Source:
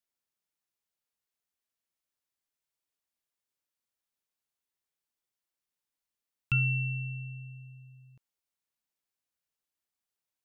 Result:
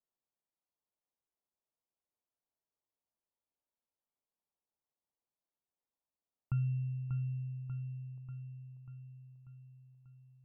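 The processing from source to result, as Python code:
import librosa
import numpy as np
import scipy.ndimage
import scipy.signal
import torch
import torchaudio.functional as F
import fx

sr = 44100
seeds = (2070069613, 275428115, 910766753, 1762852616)

p1 = scipy.signal.sosfilt(scipy.signal.butter(4, 1000.0, 'lowpass', fs=sr, output='sos'), x)
p2 = fx.low_shelf(p1, sr, hz=340.0, db=-5.0)
p3 = p2 + fx.echo_feedback(p2, sr, ms=590, feedback_pct=59, wet_db=-7.0, dry=0)
y = p3 * librosa.db_to_amplitude(1.0)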